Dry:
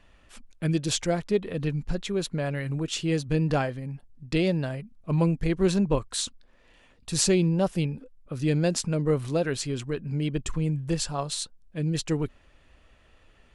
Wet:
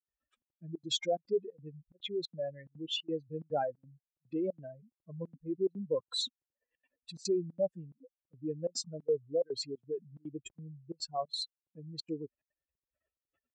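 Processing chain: spectral contrast raised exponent 3; step gate ".xxxx.xxx" 180 bpm -24 dB; BPF 440–5500 Hz; gain -2 dB

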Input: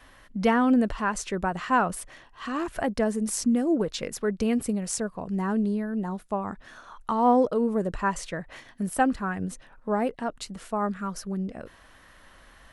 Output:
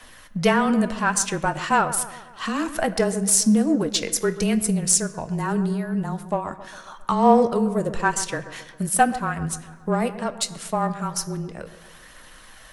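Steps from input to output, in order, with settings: high shelf 3400 Hz +11.5 dB; transient shaper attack +2 dB, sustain -4 dB; phaser 0.41 Hz, delay 4.2 ms, feedback 25%; frequency shift -23 Hz; in parallel at -11.5 dB: soft clip -23 dBFS, distortion -7 dB; on the sum: dark delay 0.135 s, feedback 53%, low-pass 1900 Hz, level -13.5 dB; on a send at -11.5 dB: reverb RT60 1.0 s, pre-delay 6 ms; on the sum: gain +1 dB

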